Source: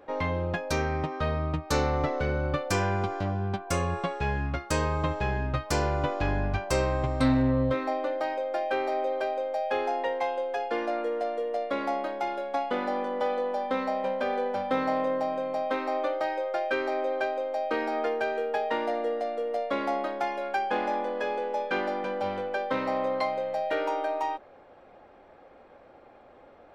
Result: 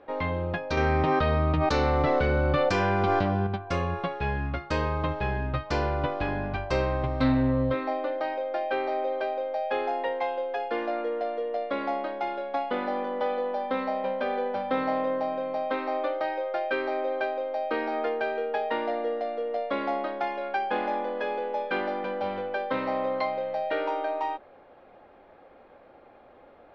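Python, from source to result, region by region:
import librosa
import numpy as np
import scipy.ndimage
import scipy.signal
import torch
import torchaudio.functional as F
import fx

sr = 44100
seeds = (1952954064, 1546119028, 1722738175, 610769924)

y = fx.chain(x, sr, fx.high_shelf(hz=8800.0, db=11.0),
    fx.env_flatten(amount_pct=100), at=(0.77, 3.47))
y = scipy.signal.sosfilt(scipy.signal.butter(4, 4500.0, 'lowpass', fs=sr, output='sos'), y)
y = fx.hum_notches(y, sr, base_hz=50, count=3)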